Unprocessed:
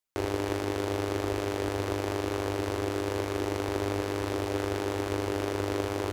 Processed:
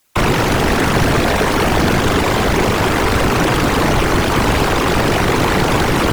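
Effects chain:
sine wavefolder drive 20 dB, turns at −13.5 dBFS
random phases in short frames
level +3 dB

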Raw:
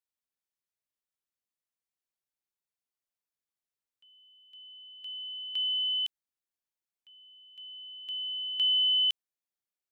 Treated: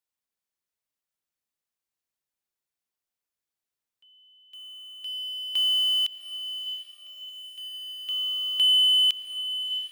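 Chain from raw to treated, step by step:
in parallel at −5 dB: log-companded quantiser 4 bits
on the sum: feedback delay with all-pass diffusion 706 ms, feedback 46%, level −10.5 dB
level +2.5 dB

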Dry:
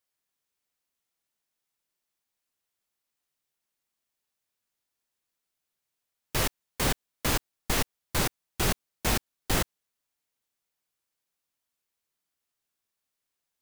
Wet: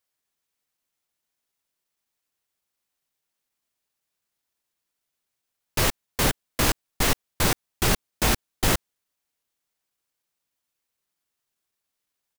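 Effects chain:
in parallel at −9 dB: log-companded quantiser 2 bits
on the sum: tempo change 1.1×
level +2.5 dB

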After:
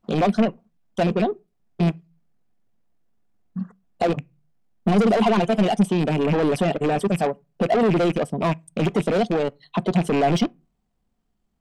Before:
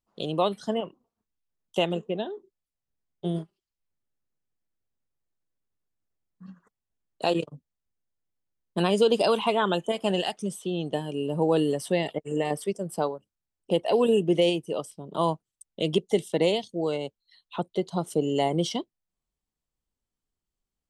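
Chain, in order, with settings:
loose part that buzzes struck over −37 dBFS, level −25 dBFS
high-shelf EQ 3,100 Hz −12 dB
in parallel at +1 dB: brickwall limiter −22 dBFS, peak gain reduction 10.5 dB
on the sum: soft clipping −25 dBFS, distortion −7 dB
hollow resonant body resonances 210/710 Hz, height 8 dB, ringing for 40 ms
on a send at −21 dB: convolution reverb RT60 0.50 s, pre-delay 4 ms
on the sum: tempo change 1.8×
level +7 dB

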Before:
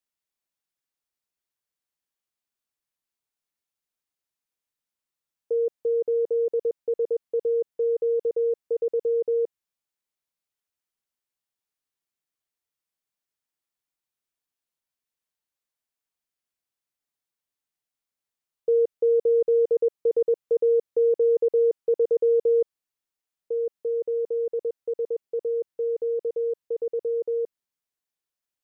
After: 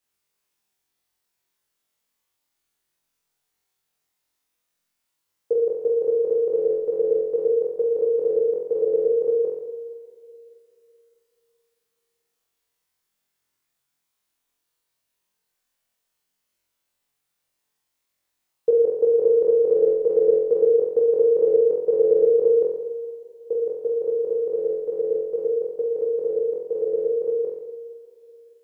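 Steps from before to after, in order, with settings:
flutter between parallel walls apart 3.9 metres, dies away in 0.86 s
spring reverb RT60 2.9 s, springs 43/60 ms, chirp 40 ms, DRR 11.5 dB
level +5.5 dB

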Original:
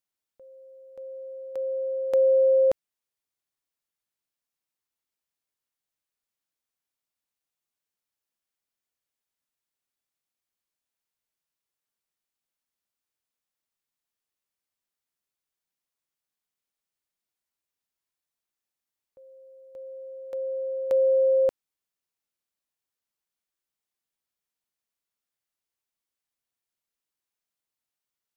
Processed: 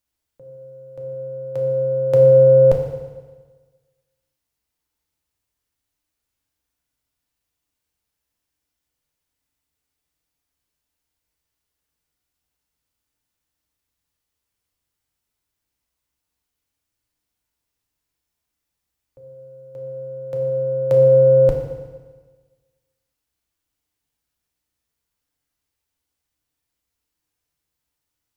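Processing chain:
sub-octave generator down 2 octaves, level +2 dB
low-shelf EQ 220 Hz +6.5 dB
feedback delay network reverb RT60 1.4 s, low-frequency decay 1×, high-frequency decay 0.95×, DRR 1 dB
level +5 dB

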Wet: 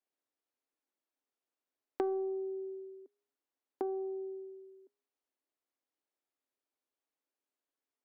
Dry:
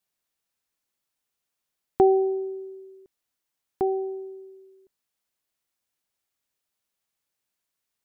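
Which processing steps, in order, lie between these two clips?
stylus tracing distortion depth 0.16 ms
elliptic high-pass filter 260 Hz, stop band 40 dB
spectral tilt −3.5 dB per octave
downward compressor 2.5 to 1, threshold −32 dBFS, peak gain reduction 14 dB
tuned comb filter 410 Hz, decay 0.74 s, mix 50%

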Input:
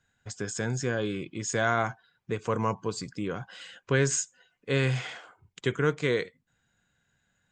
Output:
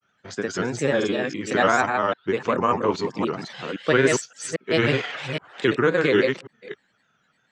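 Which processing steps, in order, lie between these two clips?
delay that plays each chunk backwards 269 ms, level −3 dB
three-way crossover with the lows and the highs turned down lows −22 dB, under 170 Hz, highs −16 dB, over 5,700 Hz
granular cloud, spray 31 ms, pitch spread up and down by 3 semitones
level +8 dB

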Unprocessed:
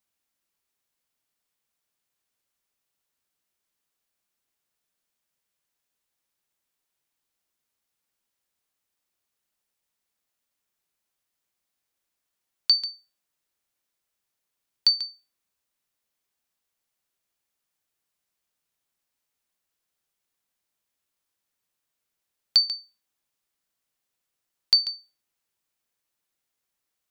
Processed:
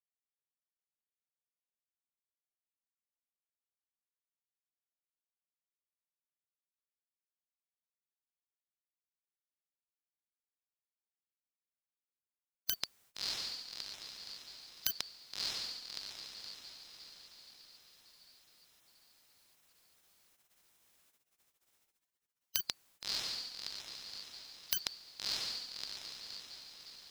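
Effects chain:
feedback delay with all-pass diffusion 637 ms, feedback 51%, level −7 dB
wave folding −19 dBFS
gate on every frequency bin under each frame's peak −25 dB weak
level +11.5 dB

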